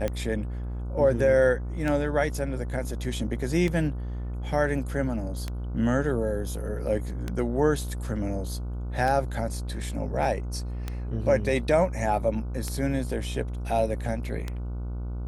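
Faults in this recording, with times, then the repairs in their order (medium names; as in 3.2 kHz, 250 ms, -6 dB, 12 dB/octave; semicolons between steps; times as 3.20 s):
buzz 60 Hz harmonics 25 -32 dBFS
tick 33 1/3 rpm -16 dBFS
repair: de-click; de-hum 60 Hz, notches 25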